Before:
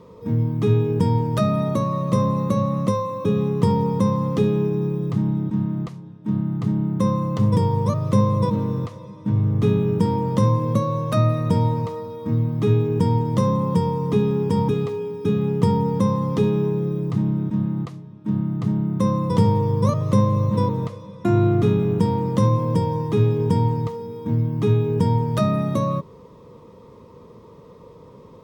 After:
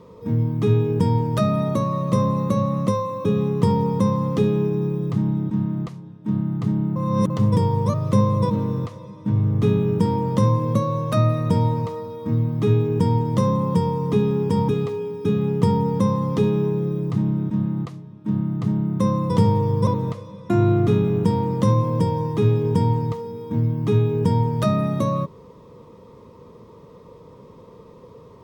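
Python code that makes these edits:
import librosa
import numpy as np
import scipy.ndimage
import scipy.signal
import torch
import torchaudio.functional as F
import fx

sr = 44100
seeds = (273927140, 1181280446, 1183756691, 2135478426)

y = fx.edit(x, sr, fx.reverse_span(start_s=6.96, length_s=0.34),
    fx.cut(start_s=19.87, length_s=0.75), tone=tone)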